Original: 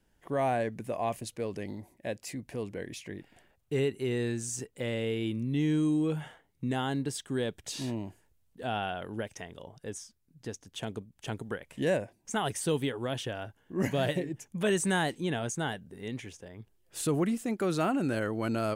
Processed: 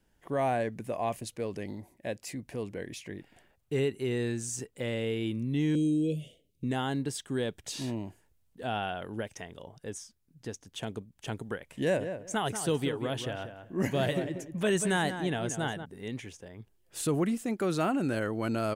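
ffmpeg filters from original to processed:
-filter_complex "[0:a]asettb=1/sr,asplit=3[a][b][c];[a]atrim=end=5.754[d];[b]atrim=start=5.75:end=6.64,asetpts=PTS-STARTPTS,afade=t=in:d=0.004:c=qsin,afade=t=out:st=0.886:d=0.004:c=qsin,asuperstop=centerf=1200:order=12:qfactor=0.67[e];[c]atrim=start=6.636[f];[d][e]acrossfade=d=0.004:c1=hsin:c2=qsin[g];[g][f]acrossfade=d=0.004:c1=qsin:c2=hsin,asplit=3[h][i][j];[h]afade=t=out:st=11.91:d=0.02[k];[i]asplit=2[l][m];[m]adelay=186,lowpass=f=2k:p=1,volume=-8.5dB,asplit=2[n][o];[o]adelay=186,lowpass=f=2k:p=1,volume=0.2,asplit=2[p][q];[q]adelay=186,lowpass=f=2k:p=1,volume=0.2[r];[l][n][p][r]amix=inputs=4:normalize=0,afade=t=in:st=11.91:d=0.02,afade=t=out:st=15.84:d=0.02[s];[j]afade=t=in:st=15.84:d=0.02[t];[k][s][t]amix=inputs=3:normalize=0"

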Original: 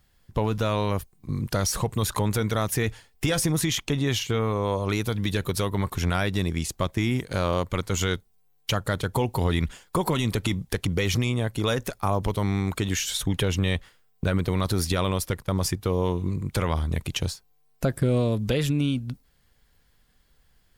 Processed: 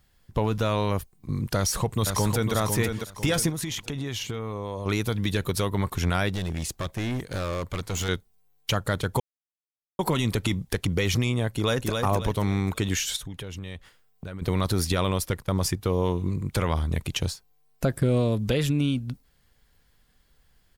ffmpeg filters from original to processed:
-filter_complex "[0:a]asplit=2[a][b];[b]afade=t=in:st=1.56:d=0.01,afade=t=out:st=2.54:d=0.01,aecho=0:1:500|1000|1500|2000:0.530884|0.18581|0.0650333|0.0227617[c];[a][c]amix=inputs=2:normalize=0,asettb=1/sr,asplit=3[d][e][f];[d]atrim=end=3.494[g];[e]atrim=start=3.49:end=4.86,asetpts=PTS-STARTPTS,afade=t=in:d=0.004:c=qsin,afade=t=out:st=1.366:d=0.004:c=qsin,acompressor=threshold=-27dB:ratio=6:attack=3.2:release=140:knee=1:detection=peak[h];[f]atrim=start=4.856[i];[g][h]acrossfade=d=0.004:c1=hsin:c2=qsin[j];[j][i]acrossfade=d=0.004:c1=qsin:c2=hsin,asettb=1/sr,asplit=3[k][l][m];[k]atrim=end=6.294[n];[l]atrim=start=6.29:end=8.09,asetpts=PTS-STARTPTS,afade=t=in:d=0.004:c=qsin,afade=t=out:st=1.796:d=0.004:c=qsin,asoftclip=type=hard:threshold=-25.5dB[o];[m]atrim=start=8.086[p];[n][o]acrossfade=d=0.004:c1=hsin:c2=qsin[q];[q][p]acrossfade=d=0.004:c1=qsin:c2=hsin,asplit=2[r][s];[s]afade=t=in:st=11.51:d=0.01,afade=t=out:st=11.91:d=0.01,aecho=0:1:270|540|810|1080:0.630957|0.220835|0.0772923|0.0270523[t];[r][t]amix=inputs=2:normalize=0,asettb=1/sr,asplit=3[u][v][w];[u]atrim=end=13.164[x];[v]atrim=start=13.16:end=14.42,asetpts=PTS-STARTPTS,afade=t=in:d=0.004:c=qsin,afade=t=out:st=1.256:d=0.004:c=qsin,acompressor=threshold=-39dB:ratio=2.5:attack=3.2:release=140:knee=1:detection=peak[y];[w]atrim=start=14.416[z];[x][y]acrossfade=d=0.004:c1=hsin:c2=qsin[aa];[aa][z]acrossfade=d=0.004:c1=qsin:c2=hsin,asplit=3[ab][ac][ad];[ab]atrim=end=9.2,asetpts=PTS-STARTPTS,afade=t=out:st=9.196:d=0.004:c=hsin[ae];[ac]atrim=start=9.2:end=9.99,asetpts=PTS-STARTPTS,volume=0[af];[ad]atrim=start=9.99,asetpts=PTS-STARTPTS,afade=t=in:d=0.004:c=hsin[ag];[ae][af][ag]concat=n=3:v=0:a=1"

